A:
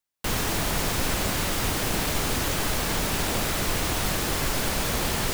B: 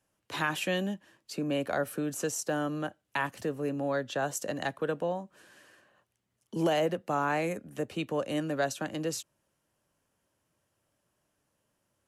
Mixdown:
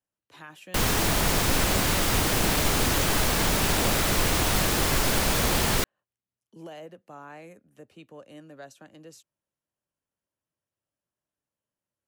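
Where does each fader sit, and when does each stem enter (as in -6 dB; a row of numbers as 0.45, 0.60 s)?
+2.5, -15.0 dB; 0.50, 0.00 s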